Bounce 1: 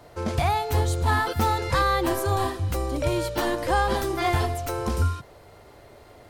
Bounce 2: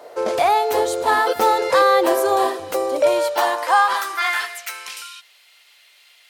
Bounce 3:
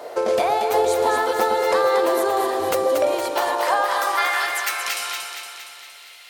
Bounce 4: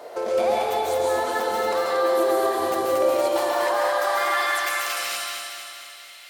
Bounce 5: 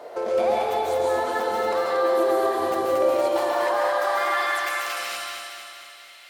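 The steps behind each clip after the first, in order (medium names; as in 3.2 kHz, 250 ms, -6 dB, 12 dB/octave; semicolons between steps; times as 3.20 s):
high-pass sweep 490 Hz -> 2.8 kHz, 2.87–5.09 s; trim +5 dB
compression, threshold -25 dBFS, peak gain reduction 13.5 dB; echo whose repeats swap between lows and highs 116 ms, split 800 Hz, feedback 76%, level -3 dB; trim +5.5 dB
peak limiter -14 dBFS, peak gain reduction 7.5 dB; reverberation RT60 0.90 s, pre-delay 132 ms, DRR -1.5 dB; trim -4.5 dB
treble shelf 3.9 kHz -7 dB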